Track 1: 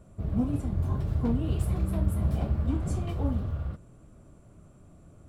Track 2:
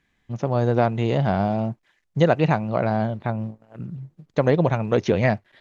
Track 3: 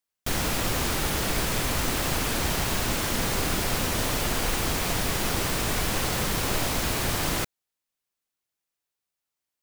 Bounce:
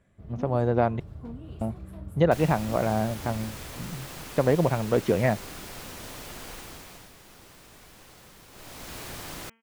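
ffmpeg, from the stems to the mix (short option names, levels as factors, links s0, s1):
-filter_complex "[0:a]volume=0.266[s0];[1:a]aemphasis=mode=reproduction:type=75kf,volume=0.75,asplit=3[s1][s2][s3];[s1]atrim=end=1,asetpts=PTS-STARTPTS,afade=t=out:st=0.996:d=0.004:c=hsin[s4];[s2]atrim=start=1:end=1.61,asetpts=PTS-STARTPTS,volume=0[s5];[s3]atrim=start=1.61,asetpts=PTS-STARTPTS,afade=t=in:d=0.004:c=hsin[s6];[s4][s5][s6]concat=n=3:v=0:a=1[s7];[2:a]bandreject=f=226.9:t=h:w=4,bandreject=f=453.8:t=h:w=4,bandreject=f=680.7:t=h:w=4,bandreject=f=907.6:t=h:w=4,bandreject=f=1134.5:t=h:w=4,bandreject=f=1361.4:t=h:w=4,bandreject=f=1588.3:t=h:w=4,bandreject=f=1815.2:t=h:w=4,bandreject=f=2042.1:t=h:w=4,bandreject=f=2269:t=h:w=4,bandreject=f=2495.9:t=h:w=4,bandreject=f=2722.8:t=h:w=4,bandreject=f=2949.7:t=h:w=4,bandreject=f=3176.6:t=h:w=4,adelay=2050,volume=0.891,afade=t=out:st=6.51:d=0.62:silence=0.298538,afade=t=in:st=8.51:d=0.47:silence=0.237137[s8];[s0][s7][s8]amix=inputs=3:normalize=0,lowshelf=f=120:g=-4"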